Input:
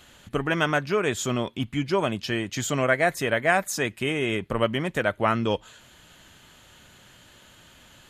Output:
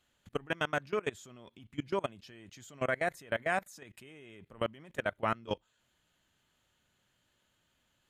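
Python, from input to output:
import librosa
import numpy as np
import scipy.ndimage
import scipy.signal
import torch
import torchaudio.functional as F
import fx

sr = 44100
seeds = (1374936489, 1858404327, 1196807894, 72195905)

y = fx.level_steps(x, sr, step_db=23)
y = F.gain(torch.from_numpy(y), -6.5).numpy()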